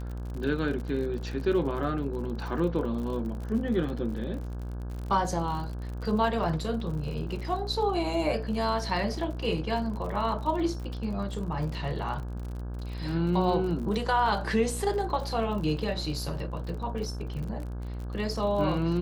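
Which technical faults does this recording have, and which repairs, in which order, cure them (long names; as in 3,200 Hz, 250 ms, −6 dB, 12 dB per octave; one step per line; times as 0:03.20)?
mains buzz 60 Hz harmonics 28 −35 dBFS
surface crackle 50 per second −36 dBFS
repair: click removal
hum removal 60 Hz, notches 28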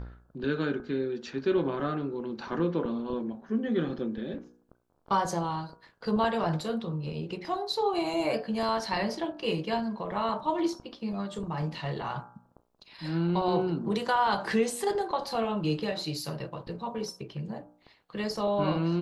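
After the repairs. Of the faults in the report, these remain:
none of them is left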